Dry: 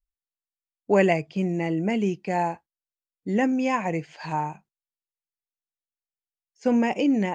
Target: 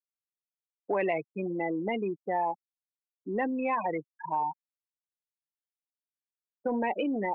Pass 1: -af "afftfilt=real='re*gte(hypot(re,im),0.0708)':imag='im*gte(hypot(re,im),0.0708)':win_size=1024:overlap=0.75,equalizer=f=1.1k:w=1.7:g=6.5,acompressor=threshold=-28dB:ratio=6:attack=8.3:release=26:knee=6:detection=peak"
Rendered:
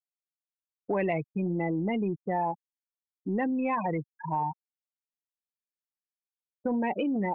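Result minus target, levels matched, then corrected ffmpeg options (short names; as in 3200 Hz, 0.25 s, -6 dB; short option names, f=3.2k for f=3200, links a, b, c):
250 Hz band +2.5 dB
-af "afftfilt=real='re*gte(hypot(re,im),0.0708)':imag='im*gte(hypot(re,im),0.0708)':win_size=1024:overlap=0.75,highpass=350,equalizer=f=1.1k:w=1.7:g=6.5,acompressor=threshold=-28dB:ratio=6:attack=8.3:release=26:knee=6:detection=peak"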